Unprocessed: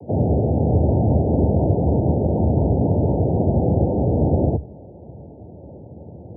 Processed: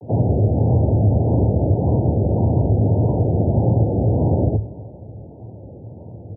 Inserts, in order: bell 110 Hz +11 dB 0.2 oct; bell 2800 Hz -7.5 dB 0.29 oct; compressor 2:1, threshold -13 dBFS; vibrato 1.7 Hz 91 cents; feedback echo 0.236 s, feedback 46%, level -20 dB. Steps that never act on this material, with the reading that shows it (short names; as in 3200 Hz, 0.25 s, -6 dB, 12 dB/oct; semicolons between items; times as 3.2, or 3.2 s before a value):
bell 2800 Hz: input band ends at 810 Hz